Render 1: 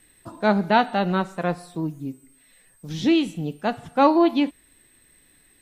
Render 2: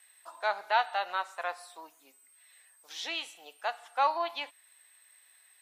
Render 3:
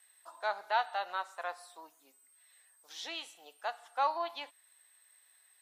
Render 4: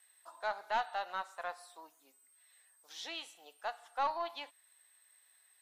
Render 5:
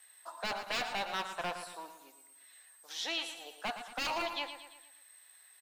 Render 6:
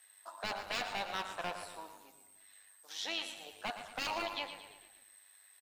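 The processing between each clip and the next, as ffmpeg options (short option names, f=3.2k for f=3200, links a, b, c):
-filter_complex "[0:a]asplit=2[a][b];[b]alimiter=limit=-16.5dB:level=0:latency=1:release=304,volume=-0.5dB[c];[a][c]amix=inputs=2:normalize=0,highpass=f=730:w=0.5412,highpass=f=730:w=1.3066,volume=-8.5dB"
-af "equalizer=f=2.4k:t=o:w=0.66:g=-4.5,volume=-3.5dB"
-af "aeval=exprs='(tanh(12.6*val(0)+0.2)-tanh(0.2))/12.6':c=same,volume=-1.5dB"
-filter_complex "[0:a]acrossover=split=1900[a][b];[a]aeval=exprs='0.0133*(abs(mod(val(0)/0.0133+3,4)-2)-1)':c=same[c];[c][b]amix=inputs=2:normalize=0,aecho=1:1:114|228|342|456|570:0.316|0.152|0.0729|0.035|0.0168,volume=7dB"
-filter_complex "[0:a]asplit=5[a][b][c][d][e];[b]adelay=146,afreqshift=-80,volume=-17dB[f];[c]adelay=292,afreqshift=-160,volume=-23.2dB[g];[d]adelay=438,afreqshift=-240,volume=-29.4dB[h];[e]adelay=584,afreqshift=-320,volume=-35.6dB[i];[a][f][g][h][i]amix=inputs=5:normalize=0,tremolo=f=100:d=0.519"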